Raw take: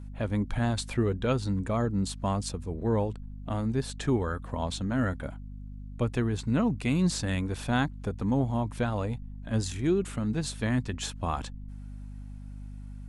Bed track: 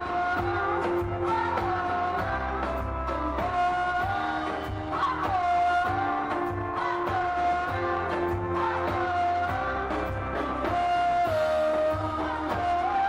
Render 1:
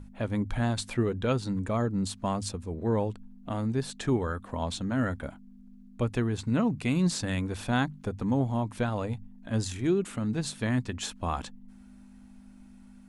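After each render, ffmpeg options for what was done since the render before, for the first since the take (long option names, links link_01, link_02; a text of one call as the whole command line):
ffmpeg -i in.wav -af "bandreject=frequency=50:width_type=h:width=6,bandreject=frequency=100:width_type=h:width=6,bandreject=frequency=150:width_type=h:width=6" out.wav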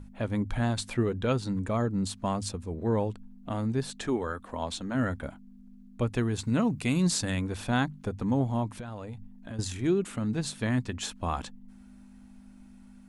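ffmpeg -i in.wav -filter_complex "[0:a]asettb=1/sr,asplit=3[link_01][link_02][link_03];[link_01]atrim=end=4.074[link_04];[link_02]atrim=start=4.07:end=4.95,asetpts=PTS-STARTPTS,afade=type=in:duration=0.004:curve=qsin,afade=type=out:start_time=0.876:duration=0.004:curve=qsin,equalizer=frequency=120:width=1.5:gain=-13.5[link_05];[link_03]atrim=start=4.946[link_06];[link_04][link_05]acrossfade=duration=0.004:curve1=hsin:curve2=qsin[link_07];[link_07][link_06]acrossfade=duration=0.004:curve1=qsin:curve2=hsin,asettb=1/sr,asplit=3[link_08][link_09][link_10];[link_08]atrim=end=6.184[link_11];[link_09]atrim=start=6.18:end=7.31,asetpts=PTS-STARTPTS,afade=type=in:duration=0.004:curve=qsin,afade=type=out:start_time=1.126:duration=0.004:curve=qsin,highshelf=frequency=5200:gain=7.5[link_12];[link_10]atrim=start=7.306[link_13];[link_11][link_12]acrossfade=duration=0.004:curve1=hsin:curve2=qsin[link_14];[link_14][link_13]acrossfade=duration=0.004:curve1=qsin:curve2=hsin,asettb=1/sr,asplit=3[link_15][link_16][link_17];[link_15]atrim=end=8.744[link_18];[link_16]atrim=start=8.74:end=9.59,asetpts=PTS-STARTPTS,afade=type=in:duration=0.004:curve=qsin,afade=type=out:start_time=0.846:duration=0.004:curve=qsin,acompressor=threshold=-35dB:ratio=10:attack=3.2:release=140:knee=1:detection=peak[link_19];[link_17]atrim=start=9.586[link_20];[link_18][link_19]acrossfade=duration=0.004:curve1=hsin:curve2=qsin[link_21];[link_21][link_20]acrossfade=duration=0.004:curve1=qsin:curve2=hsin" out.wav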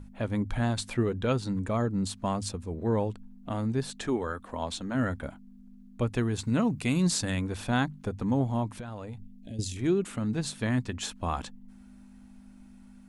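ffmpeg -i in.wav -filter_complex "[0:a]asettb=1/sr,asplit=3[link_01][link_02][link_03];[link_01]atrim=end=9.204[link_04];[link_02]atrim=start=9.2:end=9.77,asetpts=PTS-STARTPTS,afade=type=in:duration=0.004:curve=qsin,afade=type=out:start_time=0.566:duration=0.004:curve=qsin,asuperstop=centerf=1200:order=4:qfactor=0.58[link_05];[link_03]atrim=start=9.766[link_06];[link_04][link_05]acrossfade=duration=0.004:curve1=hsin:curve2=qsin[link_07];[link_07][link_06]acrossfade=duration=0.004:curve1=qsin:curve2=hsin" out.wav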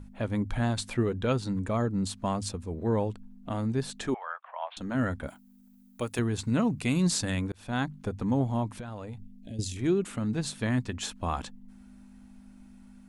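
ffmpeg -i in.wav -filter_complex "[0:a]asettb=1/sr,asplit=3[link_01][link_02][link_03];[link_01]atrim=end=4.144[link_04];[link_02]atrim=start=4.14:end=4.77,asetpts=PTS-STARTPTS,afade=type=in:duration=0.004:curve=qsin,afade=type=out:start_time=0.626:duration=0.004:curve=qsin,asuperpass=centerf=1400:order=12:qfactor=0.57[link_05];[link_03]atrim=start=4.766[link_06];[link_04][link_05]acrossfade=duration=0.004:curve1=hsin:curve2=qsin[link_07];[link_07][link_06]acrossfade=duration=0.004:curve1=qsin:curve2=hsin,asettb=1/sr,asplit=3[link_08][link_09][link_10];[link_08]atrim=end=5.284[link_11];[link_09]atrim=start=5.28:end=6.19,asetpts=PTS-STARTPTS,afade=type=in:duration=0.004:curve=qsin,afade=type=out:start_time=0.906:duration=0.004:curve=qsin,aemphasis=mode=production:type=bsi[link_12];[link_10]atrim=start=6.186[link_13];[link_11][link_12]acrossfade=duration=0.004:curve1=hsin:curve2=qsin[link_14];[link_14][link_13]acrossfade=duration=0.004:curve1=qsin:curve2=hsin,asplit=2[link_15][link_16];[link_15]atrim=end=7.52,asetpts=PTS-STARTPTS,afade=type=out:start_time=7.516:duration=0.004:curve=hsin[link_17];[link_16]atrim=start=7.52,asetpts=PTS-STARTPTS,afade=type=in:duration=0.54:curve=qsin[link_18];[link_17][link_18]concat=n=2:v=0:a=1" out.wav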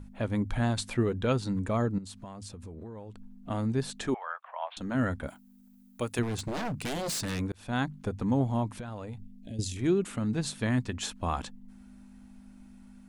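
ffmpeg -i in.wav -filter_complex "[0:a]asettb=1/sr,asplit=3[link_01][link_02][link_03];[link_01]atrim=end=1.984[link_04];[link_02]atrim=start=1.98:end=3.49,asetpts=PTS-STARTPTS,afade=type=in:duration=0.004:curve=qsin,afade=type=out:start_time=1.506:duration=0.004:curve=qsin,acompressor=threshold=-39dB:ratio=12:attack=3.2:release=140:knee=1:detection=peak[link_05];[link_03]atrim=start=3.486[link_06];[link_04][link_05]acrossfade=duration=0.004:curve1=hsin:curve2=qsin[link_07];[link_07][link_06]acrossfade=duration=0.004:curve1=qsin:curve2=hsin,asplit=3[link_08][link_09][link_10];[link_08]afade=type=out:start_time=6.22:duration=0.02[link_11];[link_09]aeval=exprs='0.0422*(abs(mod(val(0)/0.0422+3,4)-2)-1)':channel_layout=same,afade=type=in:start_time=6.22:duration=0.02,afade=type=out:start_time=7.39:duration=0.02[link_12];[link_10]afade=type=in:start_time=7.39:duration=0.02[link_13];[link_11][link_12][link_13]amix=inputs=3:normalize=0" out.wav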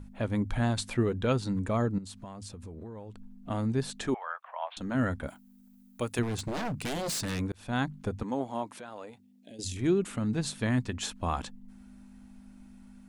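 ffmpeg -i in.wav -filter_complex "[0:a]asettb=1/sr,asplit=3[link_01][link_02][link_03];[link_01]atrim=end=8.234[link_04];[link_02]atrim=start=8.23:end=9.64,asetpts=PTS-STARTPTS,afade=type=in:duration=0.004:curve=qsin,afade=type=out:start_time=1.406:duration=0.004:curve=qsin,highpass=350[link_05];[link_03]atrim=start=9.636[link_06];[link_04][link_05]acrossfade=duration=0.004:curve1=hsin:curve2=qsin[link_07];[link_07][link_06]acrossfade=duration=0.004:curve1=qsin:curve2=hsin" out.wav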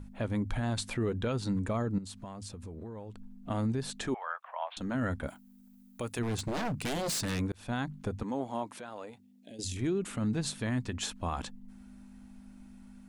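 ffmpeg -i in.wav -af "alimiter=limit=-23.5dB:level=0:latency=1:release=59" out.wav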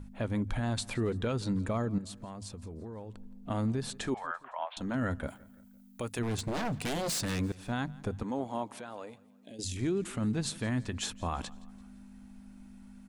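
ffmpeg -i in.wav -af "aecho=1:1:170|340|510:0.075|0.0367|0.018" out.wav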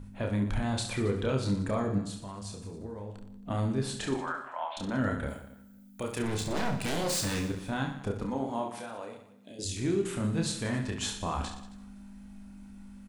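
ffmpeg -i in.wav -filter_complex "[0:a]asplit=2[link_01][link_02];[link_02]adelay=28,volume=-11.5dB[link_03];[link_01][link_03]amix=inputs=2:normalize=0,aecho=1:1:30|69|119.7|185.6|271.3:0.631|0.398|0.251|0.158|0.1" out.wav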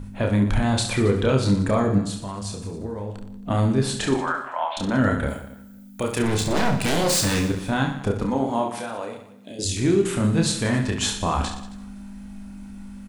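ffmpeg -i in.wav -af "volume=9.5dB" out.wav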